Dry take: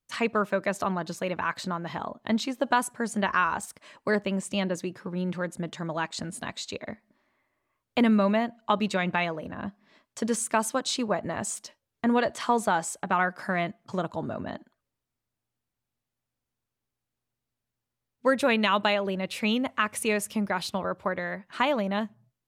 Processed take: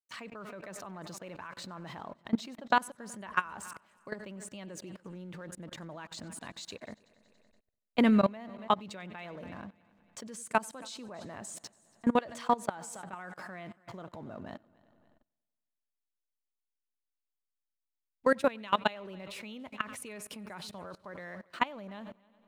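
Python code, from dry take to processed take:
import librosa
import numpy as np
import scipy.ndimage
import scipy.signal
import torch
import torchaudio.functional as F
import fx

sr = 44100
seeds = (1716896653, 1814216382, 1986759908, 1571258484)

y = fx.backlash(x, sr, play_db=-49.0)
y = fx.echo_heads(y, sr, ms=94, heads='first and third', feedback_pct=45, wet_db=-21.0)
y = fx.level_steps(y, sr, step_db=22)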